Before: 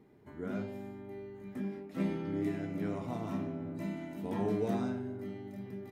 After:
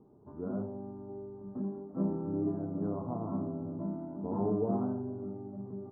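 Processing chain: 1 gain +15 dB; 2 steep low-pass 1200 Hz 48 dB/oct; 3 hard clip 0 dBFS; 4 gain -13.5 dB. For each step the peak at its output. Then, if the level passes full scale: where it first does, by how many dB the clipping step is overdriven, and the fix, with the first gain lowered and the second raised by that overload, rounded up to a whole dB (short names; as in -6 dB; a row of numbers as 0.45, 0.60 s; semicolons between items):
-5.5, -6.0, -6.0, -19.5 dBFS; no overload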